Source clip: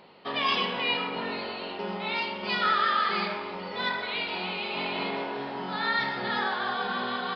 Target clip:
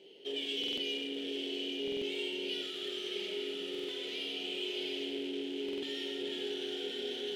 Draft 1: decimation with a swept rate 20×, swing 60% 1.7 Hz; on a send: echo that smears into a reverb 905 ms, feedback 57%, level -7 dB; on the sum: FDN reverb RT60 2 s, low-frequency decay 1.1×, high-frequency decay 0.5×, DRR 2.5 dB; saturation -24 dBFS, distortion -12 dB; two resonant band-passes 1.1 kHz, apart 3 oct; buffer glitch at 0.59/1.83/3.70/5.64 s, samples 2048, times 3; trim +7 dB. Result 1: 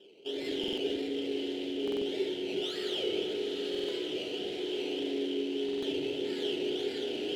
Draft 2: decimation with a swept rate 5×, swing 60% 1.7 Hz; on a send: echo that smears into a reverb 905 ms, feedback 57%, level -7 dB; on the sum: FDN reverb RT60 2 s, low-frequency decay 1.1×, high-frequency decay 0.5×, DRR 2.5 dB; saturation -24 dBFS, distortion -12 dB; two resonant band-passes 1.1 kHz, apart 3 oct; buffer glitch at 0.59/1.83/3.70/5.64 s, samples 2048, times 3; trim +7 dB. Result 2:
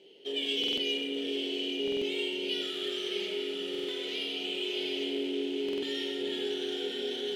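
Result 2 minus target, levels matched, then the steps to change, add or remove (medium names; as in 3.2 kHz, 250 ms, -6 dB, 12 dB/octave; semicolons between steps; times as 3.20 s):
saturation: distortion -5 dB
change: saturation -31.5 dBFS, distortion -7 dB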